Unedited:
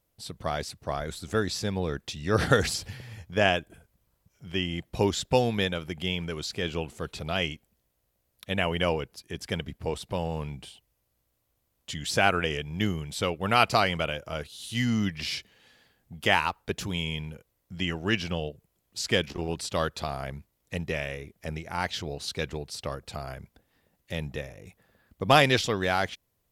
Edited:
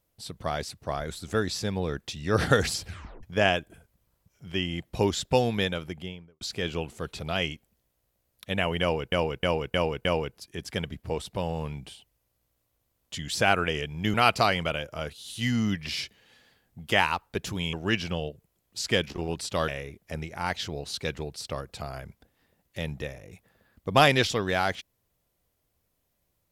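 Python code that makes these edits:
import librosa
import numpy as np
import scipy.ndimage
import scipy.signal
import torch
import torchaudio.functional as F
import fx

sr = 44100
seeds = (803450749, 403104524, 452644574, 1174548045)

y = fx.studio_fade_out(x, sr, start_s=5.75, length_s=0.66)
y = fx.edit(y, sr, fx.tape_stop(start_s=2.86, length_s=0.37),
    fx.repeat(start_s=8.81, length_s=0.31, count=5),
    fx.cut(start_s=12.9, length_s=0.58),
    fx.cut(start_s=17.07, length_s=0.86),
    fx.cut(start_s=19.88, length_s=1.14), tone=tone)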